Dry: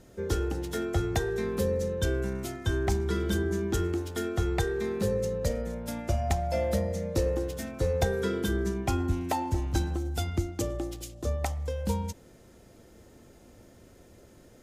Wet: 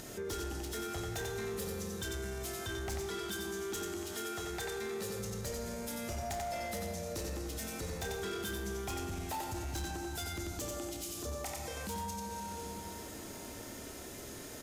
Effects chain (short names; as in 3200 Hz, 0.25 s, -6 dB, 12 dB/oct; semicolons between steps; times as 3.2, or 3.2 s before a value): tilt +2 dB/oct; notch 520 Hz, Q 12; doubler 28 ms -11 dB; echo 90 ms -6 dB; reverb RT60 2.8 s, pre-delay 38 ms, DRR 7.5 dB; upward compressor, threshold -51 dBFS; 3.06–5.19 low shelf 150 Hz -10 dB; soft clip -27 dBFS, distortion -14 dB; compressor 4:1, threshold -45 dBFS, peak gain reduction 12.5 dB; limiter -41 dBFS, peak gain reduction 6 dB; gain +8 dB